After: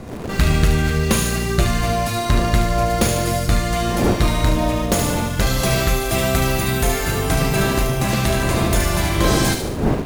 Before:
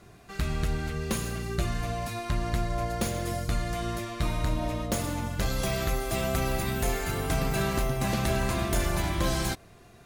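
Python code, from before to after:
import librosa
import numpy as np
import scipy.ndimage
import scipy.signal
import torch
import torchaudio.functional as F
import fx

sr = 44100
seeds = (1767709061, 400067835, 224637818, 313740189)

p1 = fx.dmg_wind(x, sr, seeds[0], corner_hz=390.0, level_db=-38.0)
p2 = fx.doubler(p1, sr, ms=39.0, db=-11)
p3 = fx.echo_wet_highpass(p2, sr, ms=73, feedback_pct=50, hz=2200.0, wet_db=-5.0)
p4 = fx.quant_dither(p3, sr, seeds[1], bits=6, dither='none')
p5 = p3 + (p4 * librosa.db_to_amplitude(-12.0))
p6 = fx.rider(p5, sr, range_db=4, speed_s=2.0)
y = p6 * librosa.db_to_amplitude(8.0)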